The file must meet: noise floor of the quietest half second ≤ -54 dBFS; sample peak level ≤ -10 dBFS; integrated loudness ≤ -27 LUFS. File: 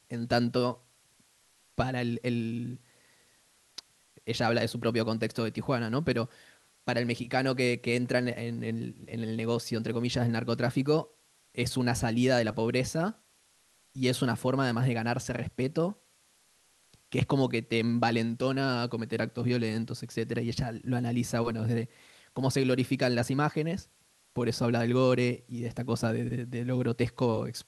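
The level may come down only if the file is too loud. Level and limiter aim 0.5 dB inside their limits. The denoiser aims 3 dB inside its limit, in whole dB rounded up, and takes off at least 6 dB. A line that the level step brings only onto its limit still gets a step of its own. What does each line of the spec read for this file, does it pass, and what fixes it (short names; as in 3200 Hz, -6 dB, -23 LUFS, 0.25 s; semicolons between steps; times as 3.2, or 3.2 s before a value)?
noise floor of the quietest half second -66 dBFS: OK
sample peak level -12.5 dBFS: OK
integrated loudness -30.0 LUFS: OK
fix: none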